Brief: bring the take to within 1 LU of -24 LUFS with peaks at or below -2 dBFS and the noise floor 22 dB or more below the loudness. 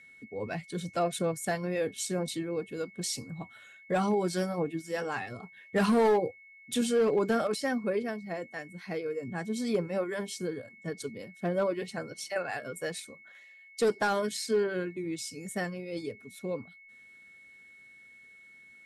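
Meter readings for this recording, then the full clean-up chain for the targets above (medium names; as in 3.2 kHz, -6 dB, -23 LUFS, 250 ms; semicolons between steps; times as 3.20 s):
clipped samples 0.6%; clipping level -20.0 dBFS; steady tone 2.2 kHz; tone level -52 dBFS; loudness -32.0 LUFS; peak level -20.0 dBFS; loudness target -24.0 LUFS
-> clip repair -20 dBFS; band-stop 2.2 kHz, Q 30; trim +8 dB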